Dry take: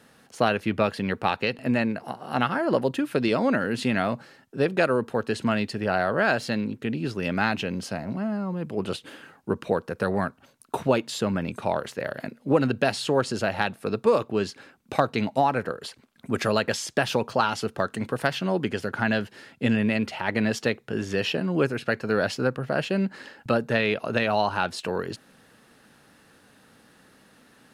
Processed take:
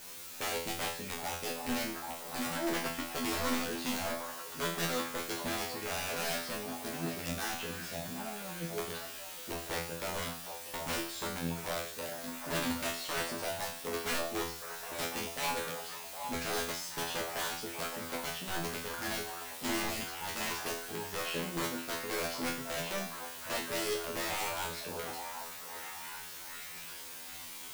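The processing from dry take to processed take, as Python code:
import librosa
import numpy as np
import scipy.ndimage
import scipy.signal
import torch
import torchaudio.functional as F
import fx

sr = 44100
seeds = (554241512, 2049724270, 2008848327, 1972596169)

p1 = fx.hum_notches(x, sr, base_hz=60, count=3)
p2 = (np.mod(10.0 ** (17.0 / 20.0) * p1 + 1.0, 2.0) - 1.0) / 10.0 ** (17.0 / 20.0)
p3 = fx.quant_dither(p2, sr, seeds[0], bits=6, dither='triangular')
p4 = fx.comb_fb(p3, sr, f0_hz=84.0, decay_s=0.45, harmonics='all', damping=0.0, mix_pct=100)
y = p4 + fx.echo_stepped(p4, sr, ms=767, hz=770.0, octaves=0.7, feedback_pct=70, wet_db=-4.0, dry=0)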